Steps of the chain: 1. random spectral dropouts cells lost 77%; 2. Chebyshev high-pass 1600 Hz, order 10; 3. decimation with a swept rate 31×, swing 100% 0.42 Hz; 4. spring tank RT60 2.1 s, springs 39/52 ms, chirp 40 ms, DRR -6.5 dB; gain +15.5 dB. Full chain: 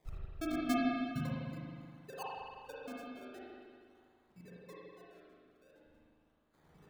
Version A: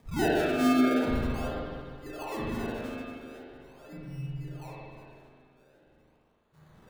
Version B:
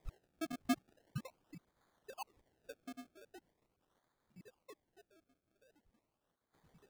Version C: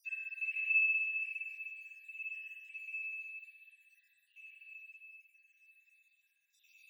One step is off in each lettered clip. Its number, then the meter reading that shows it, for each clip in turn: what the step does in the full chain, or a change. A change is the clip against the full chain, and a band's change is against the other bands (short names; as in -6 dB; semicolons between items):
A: 1, 500 Hz band +4.0 dB; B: 4, crest factor change +3.5 dB; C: 3, crest factor change -2.0 dB